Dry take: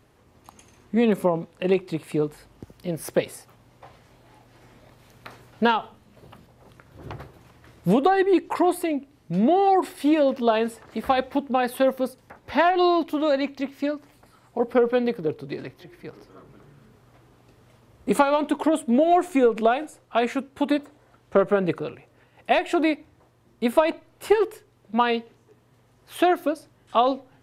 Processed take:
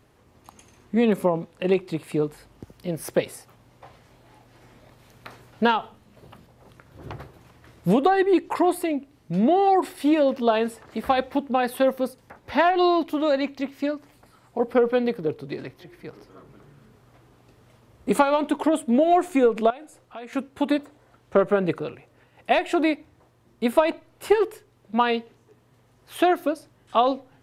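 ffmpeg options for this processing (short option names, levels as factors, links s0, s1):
-filter_complex "[0:a]asettb=1/sr,asplit=3[s0][s1][s2];[s0]atrim=end=19.704[s3];[s1]atrim=start=19.7:end=20.33,asetpts=PTS-STARTPTS,afade=t=in:d=0.004:c=qsin,afade=t=out:st=0.626:d=0.004:c=qsin,acompressor=threshold=0.00447:ratio=2:attack=3.2:release=140:knee=1:detection=peak[s4];[s2]atrim=start=20.326[s5];[s3][s4]acrossfade=d=0.004:c1=hsin:c2=qsin[s6];[s6][s5]acrossfade=d=0.004:c1=qsin:c2=hsin"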